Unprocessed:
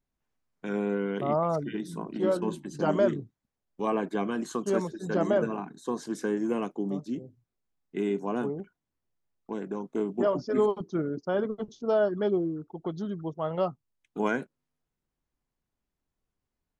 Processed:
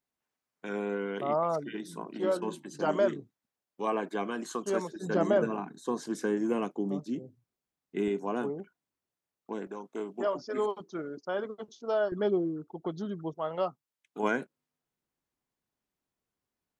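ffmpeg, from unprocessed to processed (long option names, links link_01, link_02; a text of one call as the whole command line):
ffmpeg -i in.wav -af "asetnsamples=nb_out_samples=441:pad=0,asendcmd='4.96 highpass f 120;8.08 highpass f 270;9.67 highpass f 740;12.12 highpass f 190;13.35 highpass f 520;14.23 highpass f 200',highpass=frequency=420:poles=1" out.wav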